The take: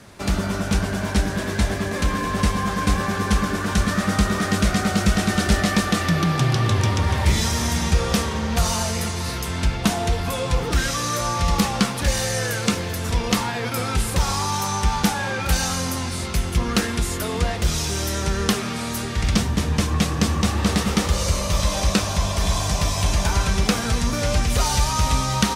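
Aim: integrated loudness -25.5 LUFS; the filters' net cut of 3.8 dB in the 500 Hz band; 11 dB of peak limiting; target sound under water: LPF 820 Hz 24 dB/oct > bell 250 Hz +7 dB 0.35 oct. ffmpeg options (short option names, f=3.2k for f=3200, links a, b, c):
-af "equalizer=f=500:t=o:g=-5,alimiter=limit=-15.5dB:level=0:latency=1,lowpass=f=820:w=0.5412,lowpass=f=820:w=1.3066,equalizer=f=250:t=o:w=0.35:g=7,volume=1.5dB"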